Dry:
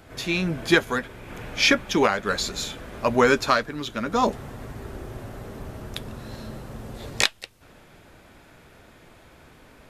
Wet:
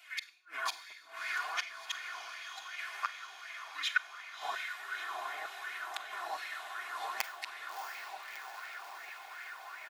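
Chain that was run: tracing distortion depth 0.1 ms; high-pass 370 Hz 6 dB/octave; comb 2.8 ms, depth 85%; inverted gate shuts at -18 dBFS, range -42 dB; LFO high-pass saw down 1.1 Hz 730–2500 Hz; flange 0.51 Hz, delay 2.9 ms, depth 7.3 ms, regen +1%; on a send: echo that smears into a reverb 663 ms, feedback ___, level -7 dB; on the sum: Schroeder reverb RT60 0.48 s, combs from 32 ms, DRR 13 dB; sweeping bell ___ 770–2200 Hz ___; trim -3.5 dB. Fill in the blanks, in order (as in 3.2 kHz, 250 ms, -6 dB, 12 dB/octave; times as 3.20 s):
71%, 2.7 Hz, +12 dB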